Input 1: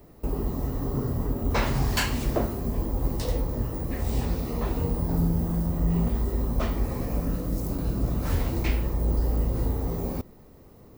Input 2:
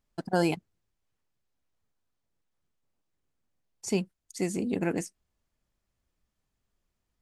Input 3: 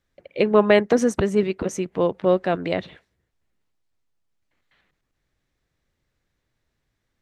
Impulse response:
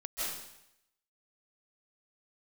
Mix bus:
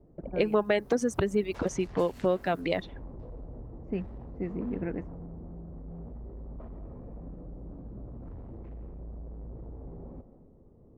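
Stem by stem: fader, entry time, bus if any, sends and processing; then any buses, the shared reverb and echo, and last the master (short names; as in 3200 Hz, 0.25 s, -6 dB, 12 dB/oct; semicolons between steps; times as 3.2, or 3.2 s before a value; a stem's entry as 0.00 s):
-7.0 dB, 0.00 s, send -11.5 dB, hard clip -28 dBFS, distortion -7 dB; compressor, threshold -36 dBFS, peak gain reduction 6.5 dB; bell 10000 Hz +3 dB 0.23 oct
-8.0 dB, 0.00 s, no send, graphic EQ 125/250/500/1000/2000/4000/8000 Hz +8/+3/+4/-7/+8/-4/-9 dB; auto duck -6 dB, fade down 0.35 s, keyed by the third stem
+2.5 dB, 0.00 s, no send, reverb removal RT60 1.1 s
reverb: on, RT60 0.80 s, pre-delay 0.12 s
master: low-pass opened by the level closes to 550 Hz, open at -18 dBFS; compressor 2.5:1, threshold -27 dBFS, peak gain reduction 13 dB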